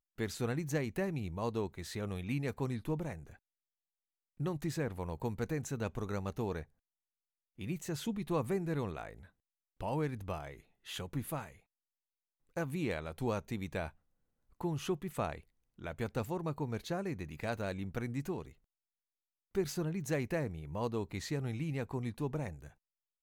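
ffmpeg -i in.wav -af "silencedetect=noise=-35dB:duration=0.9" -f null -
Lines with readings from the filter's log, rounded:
silence_start: 3.13
silence_end: 4.40 | silence_duration: 1.27
silence_start: 6.61
silence_end: 7.61 | silence_duration: 1.00
silence_start: 11.41
silence_end: 12.57 | silence_duration: 1.16
silence_start: 18.42
silence_end: 19.55 | silence_duration: 1.13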